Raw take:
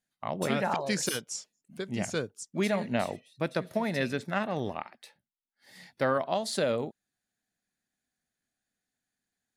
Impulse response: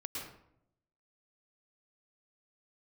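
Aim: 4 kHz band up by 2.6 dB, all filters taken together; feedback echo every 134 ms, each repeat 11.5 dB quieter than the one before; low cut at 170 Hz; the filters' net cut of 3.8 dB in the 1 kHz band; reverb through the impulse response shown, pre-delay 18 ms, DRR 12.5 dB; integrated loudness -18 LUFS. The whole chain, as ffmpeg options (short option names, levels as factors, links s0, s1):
-filter_complex "[0:a]highpass=170,equalizer=f=1000:t=o:g=-5.5,equalizer=f=4000:t=o:g=3.5,aecho=1:1:134|268|402:0.266|0.0718|0.0194,asplit=2[s0][s1];[1:a]atrim=start_sample=2205,adelay=18[s2];[s1][s2]afir=irnorm=-1:irlink=0,volume=0.237[s3];[s0][s3]amix=inputs=2:normalize=0,volume=5.01"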